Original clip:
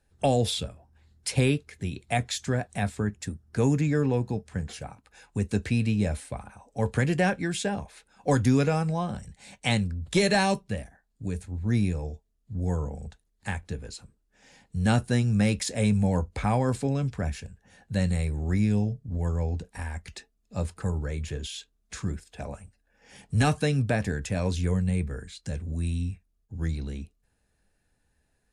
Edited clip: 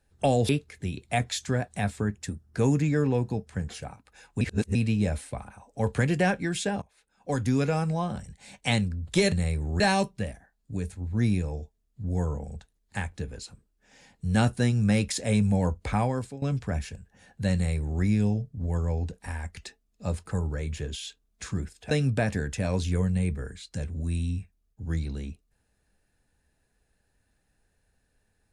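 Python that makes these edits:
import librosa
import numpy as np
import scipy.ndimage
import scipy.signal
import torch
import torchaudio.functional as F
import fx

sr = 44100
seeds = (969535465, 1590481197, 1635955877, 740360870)

y = fx.edit(x, sr, fx.cut(start_s=0.49, length_s=0.99),
    fx.reverse_span(start_s=5.4, length_s=0.34),
    fx.fade_in_from(start_s=7.81, length_s=1.09, floor_db=-20.0),
    fx.fade_out_to(start_s=16.47, length_s=0.46, floor_db=-19.0),
    fx.duplicate(start_s=18.05, length_s=0.48, to_s=10.31),
    fx.cut(start_s=22.42, length_s=1.21), tone=tone)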